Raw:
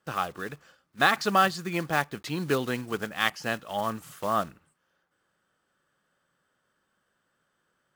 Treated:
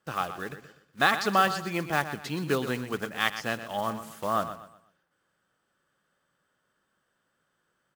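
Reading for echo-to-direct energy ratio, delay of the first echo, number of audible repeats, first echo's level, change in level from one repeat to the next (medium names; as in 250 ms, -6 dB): -11.0 dB, 122 ms, 3, -11.5 dB, -9.5 dB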